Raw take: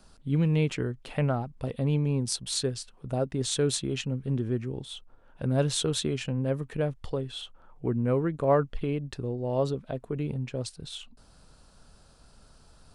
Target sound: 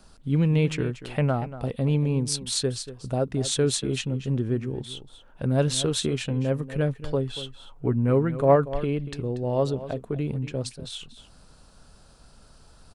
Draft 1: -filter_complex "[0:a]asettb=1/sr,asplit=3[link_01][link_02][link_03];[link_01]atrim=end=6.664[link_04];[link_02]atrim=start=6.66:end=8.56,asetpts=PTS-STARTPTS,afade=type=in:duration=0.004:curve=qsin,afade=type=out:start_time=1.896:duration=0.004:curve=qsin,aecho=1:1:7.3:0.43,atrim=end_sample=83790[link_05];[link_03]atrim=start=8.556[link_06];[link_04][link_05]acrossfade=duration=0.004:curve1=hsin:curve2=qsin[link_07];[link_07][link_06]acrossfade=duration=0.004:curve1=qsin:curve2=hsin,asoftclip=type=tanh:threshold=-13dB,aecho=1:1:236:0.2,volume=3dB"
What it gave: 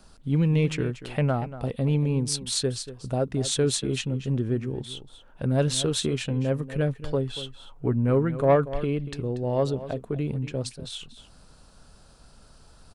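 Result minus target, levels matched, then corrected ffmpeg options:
soft clipping: distortion +15 dB
-filter_complex "[0:a]asettb=1/sr,asplit=3[link_01][link_02][link_03];[link_01]atrim=end=6.664[link_04];[link_02]atrim=start=6.66:end=8.56,asetpts=PTS-STARTPTS,afade=type=in:duration=0.004:curve=qsin,afade=type=out:start_time=1.896:duration=0.004:curve=qsin,aecho=1:1:7.3:0.43,atrim=end_sample=83790[link_05];[link_03]atrim=start=8.556[link_06];[link_04][link_05]acrossfade=duration=0.004:curve1=hsin:curve2=qsin[link_07];[link_07][link_06]acrossfade=duration=0.004:curve1=qsin:curve2=hsin,asoftclip=type=tanh:threshold=-4dB,aecho=1:1:236:0.2,volume=3dB"

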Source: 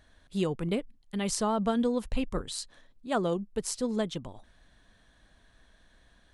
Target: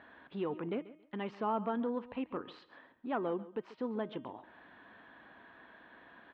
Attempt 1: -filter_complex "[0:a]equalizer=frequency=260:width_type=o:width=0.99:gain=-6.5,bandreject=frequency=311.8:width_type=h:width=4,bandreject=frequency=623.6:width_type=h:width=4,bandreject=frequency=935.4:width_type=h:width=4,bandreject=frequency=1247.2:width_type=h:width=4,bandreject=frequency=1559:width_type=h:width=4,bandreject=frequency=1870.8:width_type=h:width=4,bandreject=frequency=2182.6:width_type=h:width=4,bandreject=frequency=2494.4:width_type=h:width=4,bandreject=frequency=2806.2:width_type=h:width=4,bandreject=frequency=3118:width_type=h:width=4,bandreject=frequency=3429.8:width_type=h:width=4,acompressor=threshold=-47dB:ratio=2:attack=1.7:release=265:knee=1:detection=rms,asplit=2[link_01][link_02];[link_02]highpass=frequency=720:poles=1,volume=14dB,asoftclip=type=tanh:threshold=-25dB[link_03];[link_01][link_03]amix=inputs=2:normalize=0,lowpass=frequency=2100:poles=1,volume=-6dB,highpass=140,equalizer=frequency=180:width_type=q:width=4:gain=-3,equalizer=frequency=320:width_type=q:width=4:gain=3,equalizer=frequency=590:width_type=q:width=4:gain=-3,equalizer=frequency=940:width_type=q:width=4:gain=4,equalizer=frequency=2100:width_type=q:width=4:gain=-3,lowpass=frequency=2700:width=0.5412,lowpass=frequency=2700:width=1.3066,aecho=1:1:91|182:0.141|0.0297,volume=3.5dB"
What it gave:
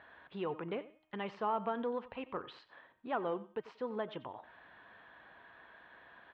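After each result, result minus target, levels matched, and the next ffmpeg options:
echo 47 ms early; 250 Hz band −4.0 dB
-filter_complex "[0:a]equalizer=frequency=260:width_type=o:width=0.99:gain=-6.5,bandreject=frequency=311.8:width_type=h:width=4,bandreject=frequency=623.6:width_type=h:width=4,bandreject=frequency=935.4:width_type=h:width=4,bandreject=frequency=1247.2:width_type=h:width=4,bandreject=frequency=1559:width_type=h:width=4,bandreject=frequency=1870.8:width_type=h:width=4,bandreject=frequency=2182.6:width_type=h:width=4,bandreject=frequency=2494.4:width_type=h:width=4,bandreject=frequency=2806.2:width_type=h:width=4,bandreject=frequency=3118:width_type=h:width=4,bandreject=frequency=3429.8:width_type=h:width=4,acompressor=threshold=-47dB:ratio=2:attack=1.7:release=265:knee=1:detection=rms,asplit=2[link_01][link_02];[link_02]highpass=frequency=720:poles=1,volume=14dB,asoftclip=type=tanh:threshold=-25dB[link_03];[link_01][link_03]amix=inputs=2:normalize=0,lowpass=frequency=2100:poles=1,volume=-6dB,highpass=140,equalizer=frequency=180:width_type=q:width=4:gain=-3,equalizer=frequency=320:width_type=q:width=4:gain=3,equalizer=frequency=590:width_type=q:width=4:gain=-3,equalizer=frequency=940:width_type=q:width=4:gain=4,equalizer=frequency=2100:width_type=q:width=4:gain=-3,lowpass=frequency=2700:width=0.5412,lowpass=frequency=2700:width=1.3066,aecho=1:1:138|276:0.141|0.0297,volume=3.5dB"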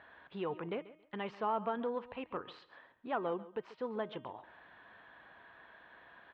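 250 Hz band −4.0 dB
-filter_complex "[0:a]equalizer=frequency=260:width_type=o:width=0.99:gain=3.5,bandreject=frequency=311.8:width_type=h:width=4,bandreject=frequency=623.6:width_type=h:width=4,bandreject=frequency=935.4:width_type=h:width=4,bandreject=frequency=1247.2:width_type=h:width=4,bandreject=frequency=1559:width_type=h:width=4,bandreject=frequency=1870.8:width_type=h:width=4,bandreject=frequency=2182.6:width_type=h:width=4,bandreject=frequency=2494.4:width_type=h:width=4,bandreject=frequency=2806.2:width_type=h:width=4,bandreject=frequency=3118:width_type=h:width=4,bandreject=frequency=3429.8:width_type=h:width=4,acompressor=threshold=-47dB:ratio=2:attack=1.7:release=265:knee=1:detection=rms,asplit=2[link_01][link_02];[link_02]highpass=frequency=720:poles=1,volume=14dB,asoftclip=type=tanh:threshold=-25dB[link_03];[link_01][link_03]amix=inputs=2:normalize=0,lowpass=frequency=2100:poles=1,volume=-6dB,highpass=140,equalizer=frequency=180:width_type=q:width=4:gain=-3,equalizer=frequency=320:width_type=q:width=4:gain=3,equalizer=frequency=590:width_type=q:width=4:gain=-3,equalizer=frequency=940:width_type=q:width=4:gain=4,equalizer=frequency=2100:width_type=q:width=4:gain=-3,lowpass=frequency=2700:width=0.5412,lowpass=frequency=2700:width=1.3066,aecho=1:1:138|276:0.141|0.0297,volume=3.5dB"

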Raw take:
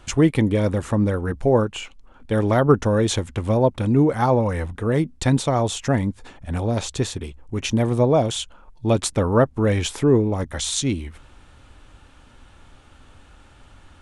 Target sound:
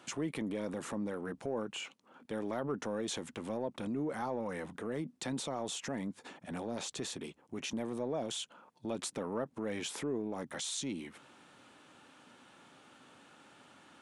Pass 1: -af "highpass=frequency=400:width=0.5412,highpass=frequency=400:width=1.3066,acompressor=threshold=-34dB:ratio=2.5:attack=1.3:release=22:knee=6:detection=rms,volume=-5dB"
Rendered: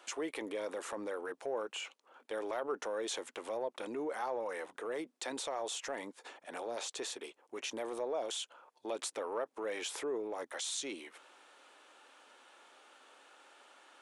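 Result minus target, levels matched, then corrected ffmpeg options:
125 Hz band −19.5 dB
-af "highpass=frequency=170:width=0.5412,highpass=frequency=170:width=1.3066,acompressor=threshold=-34dB:ratio=2.5:attack=1.3:release=22:knee=6:detection=rms,volume=-5dB"

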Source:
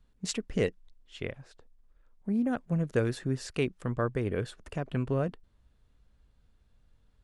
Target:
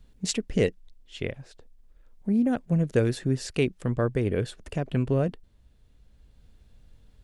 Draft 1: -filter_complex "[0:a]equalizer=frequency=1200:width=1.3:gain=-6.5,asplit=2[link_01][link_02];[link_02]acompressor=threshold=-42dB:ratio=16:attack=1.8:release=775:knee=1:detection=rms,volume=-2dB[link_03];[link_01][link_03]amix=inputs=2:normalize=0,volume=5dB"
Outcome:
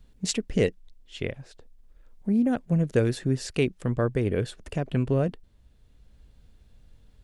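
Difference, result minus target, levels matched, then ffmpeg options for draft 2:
downward compressor: peak gain reduction −6 dB
-filter_complex "[0:a]equalizer=frequency=1200:width=1.3:gain=-6.5,asplit=2[link_01][link_02];[link_02]acompressor=threshold=-48.5dB:ratio=16:attack=1.8:release=775:knee=1:detection=rms,volume=-2dB[link_03];[link_01][link_03]amix=inputs=2:normalize=0,volume=5dB"

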